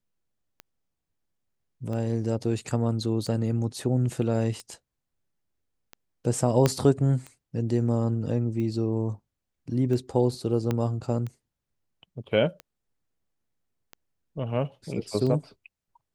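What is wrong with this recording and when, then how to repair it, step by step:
tick 45 rpm -24 dBFS
6.66 s: pop -8 dBFS
10.71 s: pop -14 dBFS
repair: de-click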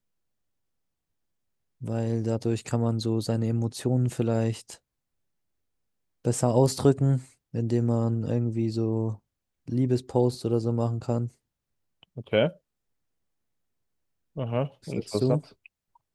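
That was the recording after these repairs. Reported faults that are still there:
6.66 s: pop
10.71 s: pop

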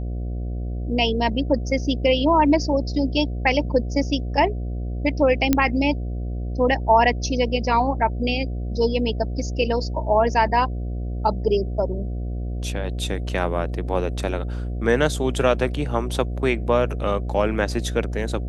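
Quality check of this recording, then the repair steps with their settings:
buzz 60 Hz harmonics 12 -27 dBFS
5.53 s: pop -4 dBFS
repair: de-click; de-hum 60 Hz, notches 12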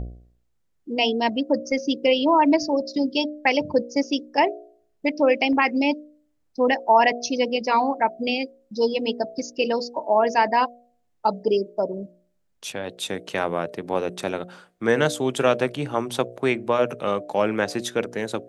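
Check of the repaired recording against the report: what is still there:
nothing left

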